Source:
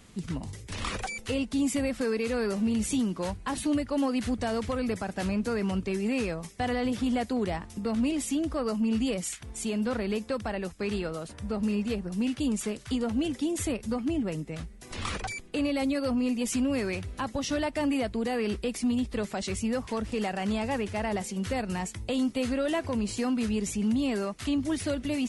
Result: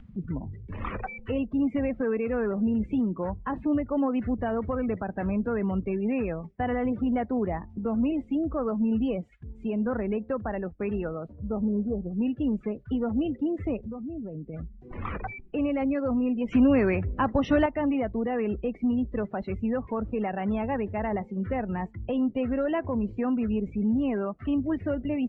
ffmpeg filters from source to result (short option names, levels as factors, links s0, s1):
-filter_complex "[0:a]asettb=1/sr,asplit=3[s0][s1][s2];[s0]atrim=end=11.354[s3];[s1]atrim=start=11.35:end=12.12,asetpts=PTS-STARTPTS,afade=t=in:d=0.004:c=qsin,afade=t=out:st=0.766:d=0.004:c=qsin,lowpass=f=1300:w=0.5412,lowpass=f=1300:w=1.3066[s4];[s2]atrim=start=12.116[s5];[s3][s4]acrossfade=d=0.004:c1=hsin:c2=qsin[s6];[s6][s5]acrossfade=d=0.004:c1=qsin:c2=hsin,asettb=1/sr,asplit=3[s7][s8][s9];[s7]atrim=end=13.774[s10];[s8]atrim=start=13.77:end=14.54,asetpts=PTS-STARTPTS,afade=t=in:d=0.004:c=qsin,afade=t=out:st=0.766:d=0.004:c=qsin,acompressor=threshold=0.02:ratio=8:attack=3.2:release=140:knee=1:detection=peak[s11];[s9]atrim=start=14.536[s12];[s10][s11]acrossfade=d=0.004:c1=hsin:c2=qsin[s13];[s13][s12]acrossfade=d=0.004:c1=qsin:c2=hsin,asettb=1/sr,asplit=3[s14][s15][s16];[s14]atrim=end=16.484[s17];[s15]atrim=start=16.48:end=17.66,asetpts=PTS-STARTPTS,afade=t=in:d=0.004:c=qsin,afade=t=out:st=1.176:d=0.004:c=qsin,acontrast=54[s18];[s16]atrim=start=17.656[s19];[s17][s18]acrossfade=d=0.004:c1=hsin:c2=qsin[s20];[s20][s19]acrossfade=d=0.004:c1=qsin:c2=hsin,lowpass=2000,afftdn=nr=27:nf=-41,acompressor=mode=upward:threshold=0.0126:ratio=2.5,volume=1.19"